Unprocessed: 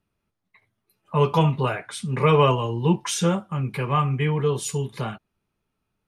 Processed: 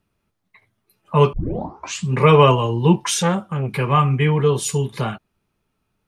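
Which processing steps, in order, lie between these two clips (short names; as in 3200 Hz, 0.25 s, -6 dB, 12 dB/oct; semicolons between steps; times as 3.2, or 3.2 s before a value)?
1.33 tape start 0.80 s; 3.07–3.69 core saturation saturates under 810 Hz; gain +5.5 dB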